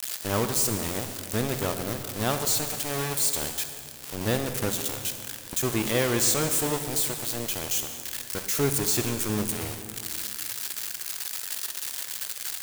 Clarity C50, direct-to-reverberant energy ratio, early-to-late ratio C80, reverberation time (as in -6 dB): 7.5 dB, 7.0 dB, 8.5 dB, 2.3 s